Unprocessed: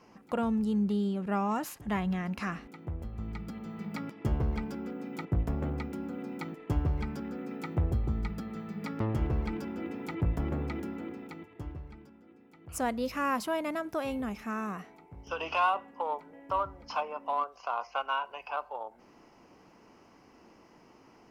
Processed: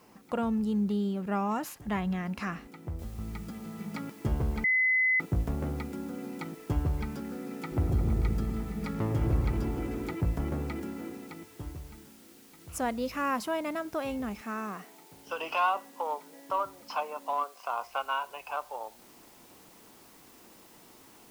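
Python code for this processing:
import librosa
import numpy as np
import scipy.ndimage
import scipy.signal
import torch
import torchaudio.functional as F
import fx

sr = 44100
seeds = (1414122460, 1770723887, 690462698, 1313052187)

y = fx.noise_floor_step(x, sr, seeds[0], at_s=2.99, before_db=-68, after_db=-58, tilt_db=0.0)
y = fx.echo_opening(y, sr, ms=116, hz=400, octaves=1, feedback_pct=70, wet_db=-3, at=(7.71, 10.12), fade=0.02)
y = fx.highpass(y, sr, hz=200.0, slope=12, at=(14.41, 17.68))
y = fx.edit(y, sr, fx.bleep(start_s=4.64, length_s=0.56, hz=2030.0, db=-22.0), tone=tone)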